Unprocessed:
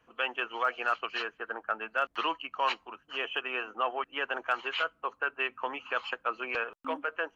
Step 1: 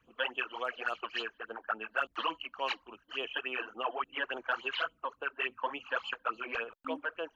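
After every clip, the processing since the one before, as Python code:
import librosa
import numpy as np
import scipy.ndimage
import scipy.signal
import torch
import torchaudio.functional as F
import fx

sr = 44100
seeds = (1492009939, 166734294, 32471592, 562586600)

y = fx.phaser_stages(x, sr, stages=12, low_hz=120.0, high_hz=1900.0, hz=3.5, feedback_pct=40)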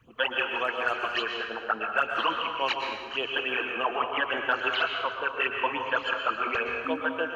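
y = fx.peak_eq(x, sr, hz=110.0, db=10.5, octaves=1.1)
y = fx.rev_plate(y, sr, seeds[0], rt60_s=1.3, hf_ratio=0.9, predelay_ms=105, drr_db=2.5)
y = F.gain(torch.from_numpy(y), 6.0).numpy()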